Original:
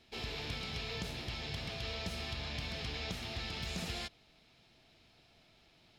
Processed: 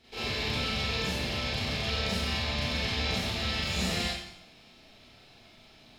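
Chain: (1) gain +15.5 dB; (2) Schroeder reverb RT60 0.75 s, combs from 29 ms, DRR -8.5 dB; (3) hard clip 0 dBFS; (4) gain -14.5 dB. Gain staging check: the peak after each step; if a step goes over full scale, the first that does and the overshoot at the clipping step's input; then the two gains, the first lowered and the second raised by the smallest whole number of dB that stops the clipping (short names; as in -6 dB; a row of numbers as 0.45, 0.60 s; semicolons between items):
-12.5, -3.5, -3.5, -18.0 dBFS; no overload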